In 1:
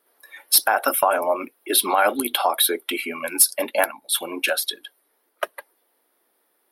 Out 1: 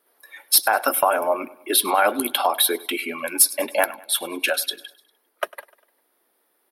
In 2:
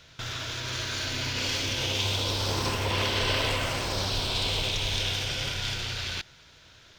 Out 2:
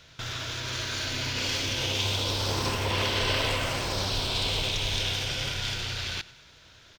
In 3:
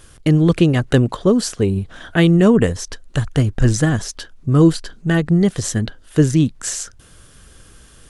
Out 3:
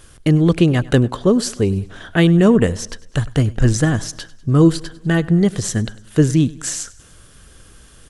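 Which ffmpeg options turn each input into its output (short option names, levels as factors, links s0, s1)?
-af "aecho=1:1:100|200|300|400:0.0891|0.0455|0.0232|0.0118"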